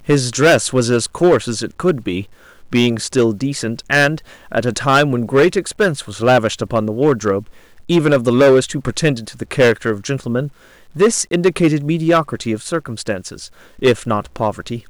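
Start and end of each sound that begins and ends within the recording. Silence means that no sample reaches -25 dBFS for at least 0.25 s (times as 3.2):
2.73–4.18
4.52–7.42
7.89–10.48
10.96–13.46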